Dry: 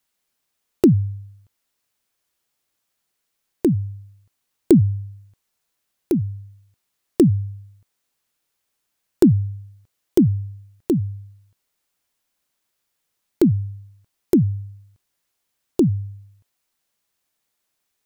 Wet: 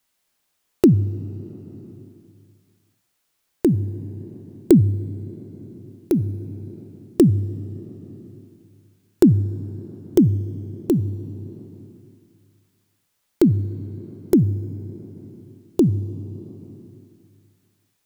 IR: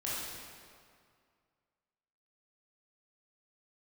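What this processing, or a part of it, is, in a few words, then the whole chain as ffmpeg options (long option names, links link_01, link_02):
ducked reverb: -filter_complex "[0:a]asplit=3[link_01][link_02][link_03];[1:a]atrim=start_sample=2205[link_04];[link_02][link_04]afir=irnorm=-1:irlink=0[link_05];[link_03]apad=whole_len=796433[link_06];[link_05][link_06]sidechaincompress=threshold=-33dB:ratio=5:attack=16:release=636,volume=-4.5dB[link_07];[link_01][link_07]amix=inputs=2:normalize=0"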